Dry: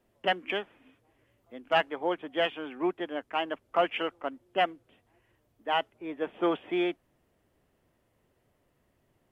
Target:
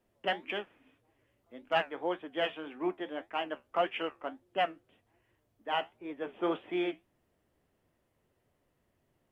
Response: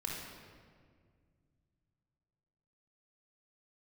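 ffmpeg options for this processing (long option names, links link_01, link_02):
-af "flanger=delay=8.7:depth=6.1:regen=-63:speed=1.8:shape=triangular"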